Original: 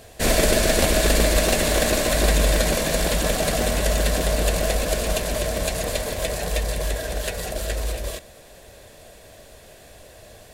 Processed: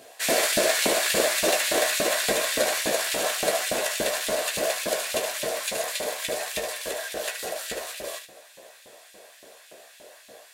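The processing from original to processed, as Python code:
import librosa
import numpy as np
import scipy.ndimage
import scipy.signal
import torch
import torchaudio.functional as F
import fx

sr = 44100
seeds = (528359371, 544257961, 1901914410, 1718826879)

y = fx.room_early_taps(x, sr, ms=(15, 74), db=(-5.5, -6.5))
y = fx.filter_lfo_highpass(y, sr, shape='saw_up', hz=3.5, low_hz=230.0, high_hz=2700.0, q=1.1)
y = F.gain(torch.from_numpy(y), -3.0).numpy()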